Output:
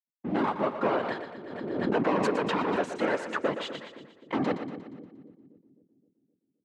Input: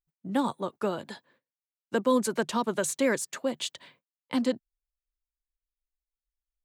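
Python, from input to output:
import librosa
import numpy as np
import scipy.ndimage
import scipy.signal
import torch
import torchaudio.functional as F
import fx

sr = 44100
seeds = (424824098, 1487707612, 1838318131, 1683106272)

y = fx.leveller(x, sr, passes=3)
y = fx.rider(y, sr, range_db=10, speed_s=0.5)
y = fx.leveller(y, sr, passes=2)
y = fx.whisperise(y, sr, seeds[0])
y = fx.bandpass_edges(y, sr, low_hz=230.0, high_hz=2000.0)
y = fx.echo_split(y, sr, split_hz=410.0, low_ms=260, high_ms=118, feedback_pct=52, wet_db=-9.5)
y = fx.pre_swell(y, sr, db_per_s=35.0, at=(0.85, 2.86))
y = y * librosa.db_to_amplitude(-8.0)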